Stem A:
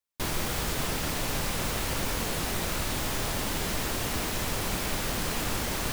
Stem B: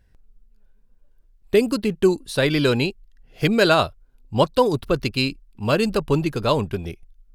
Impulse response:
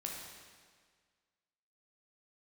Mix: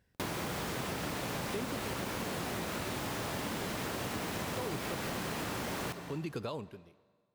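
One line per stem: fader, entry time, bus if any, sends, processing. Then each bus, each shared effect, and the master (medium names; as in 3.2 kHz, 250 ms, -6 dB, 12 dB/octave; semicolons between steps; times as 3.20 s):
+1.0 dB, 0.00 s, send -5.5 dB, treble shelf 3 kHz -8 dB
-6.0 dB, 0.00 s, send -19.5 dB, peak limiter -16 dBFS, peak gain reduction 11 dB; logarithmic tremolo 0.63 Hz, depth 30 dB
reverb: on, RT60 1.7 s, pre-delay 11 ms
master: high-pass 110 Hz 12 dB/octave; compression 4:1, threshold -35 dBFS, peak gain reduction 10.5 dB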